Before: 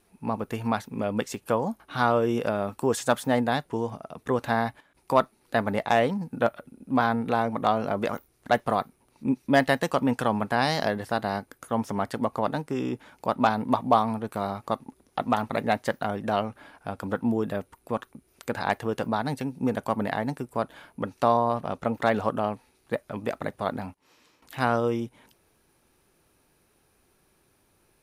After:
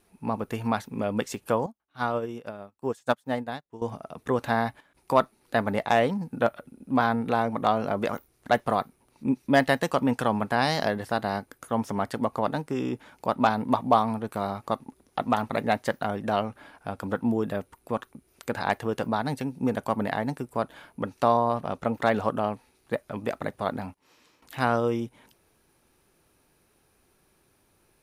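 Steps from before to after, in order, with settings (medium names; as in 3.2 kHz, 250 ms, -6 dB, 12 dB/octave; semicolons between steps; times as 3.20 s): 1.66–3.82 s: upward expansion 2.5:1, over -39 dBFS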